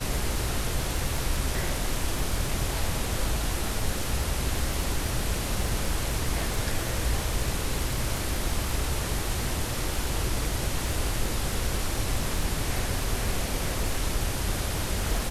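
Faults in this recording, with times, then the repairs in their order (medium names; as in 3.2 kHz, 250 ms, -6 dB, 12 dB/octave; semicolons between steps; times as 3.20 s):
crackle 30 per s -30 dBFS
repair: de-click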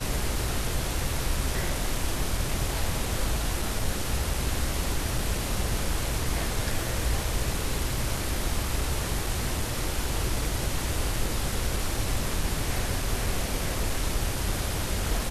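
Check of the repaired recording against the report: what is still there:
nothing left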